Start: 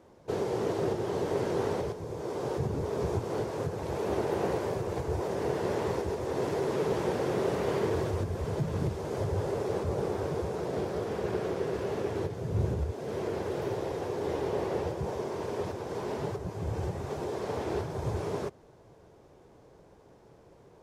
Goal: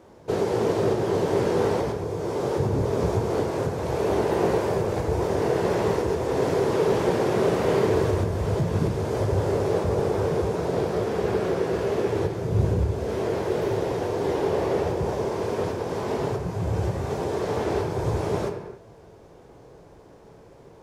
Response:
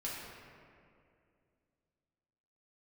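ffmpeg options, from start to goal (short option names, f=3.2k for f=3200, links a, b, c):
-filter_complex "[0:a]asplit=2[a][b];[1:a]atrim=start_sample=2205,afade=t=out:st=0.33:d=0.01,atrim=end_sample=14994,adelay=18[c];[b][c]afir=irnorm=-1:irlink=0,volume=-6dB[d];[a][d]amix=inputs=2:normalize=0,volume=6dB"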